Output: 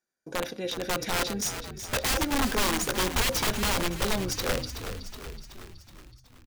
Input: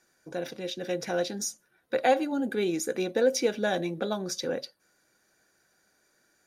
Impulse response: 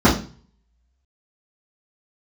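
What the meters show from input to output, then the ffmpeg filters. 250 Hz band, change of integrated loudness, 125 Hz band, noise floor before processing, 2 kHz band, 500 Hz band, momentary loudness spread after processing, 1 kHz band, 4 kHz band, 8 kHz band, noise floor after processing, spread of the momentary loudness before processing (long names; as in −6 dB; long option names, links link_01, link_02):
−0.5 dB, +1.0 dB, +7.0 dB, −70 dBFS, +5.0 dB, −5.0 dB, 15 LU, +1.5 dB, +7.5 dB, +5.5 dB, −58 dBFS, 11 LU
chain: -filter_complex "[0:a]agate=range=-22dB:threshold=-58dB:ratio=16:detection=peak,aeval=exprs='(mod(15.8*val(0)+1,2)-1)/15.8':channel_layout=same,asplit=8[link_01][link_02][link_03][link_04][link_05][link_06][link_07][link_08];[link_02]adelay=373,afreqshift=-49,volume=-10dB[link_09];[link_03]adelay=746,afreqshift=-98,volume=-14.9dB[link_10];[link_04]adelay=1119,afreqshift=-147,volume=-19.8dB[link_11];[link_05]adelay=1492,afreqshift=-196,volume=-24.6dB[link_12];[link_06]adelay=1865,afreqshift=-245,volume=-29.5dB[link_13];[link_07]adelay=2238,afreqshift=-294,volume=-34.4dB[link_14];[link_08]adelay=2611,afreqshift=-343,volume=-39.3dB[link_15];[link_01][link_09][link_10][link_11][link_12][link_13][link_14][link_15]amix=inputs=8:normalize=0,asplit=2[link_16][link_17];[1:a]atrim=start_sample=2205[link_18];[link_17][link_18]afir=irnorm=-1:irlink=0,volume=-44.5dB[link_19];[link_16][link_19]amix=inputs=2:normalize=0,asubboost=boost=4.5:cutoff=110,volume=2.5dB"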